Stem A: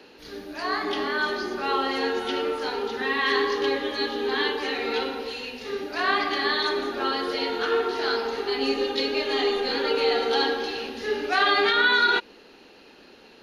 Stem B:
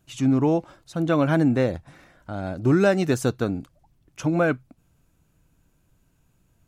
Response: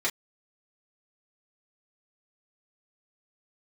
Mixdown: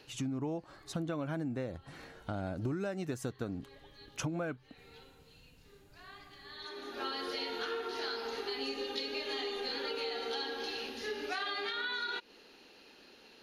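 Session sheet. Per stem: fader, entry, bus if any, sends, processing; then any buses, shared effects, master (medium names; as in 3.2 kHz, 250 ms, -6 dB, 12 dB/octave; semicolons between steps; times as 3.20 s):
-9.5 dB, 0.00 s, no send, treble shelf 2.6 kHz +7.5 dB; auto duck -22 dB, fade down 0.35 s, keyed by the second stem
-5.5 dB, 0.00 s, no send, level rider gain up to 6 dB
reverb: none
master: compression 8:1, threshold -34 dBFS, peak gain reduction 18.5 dB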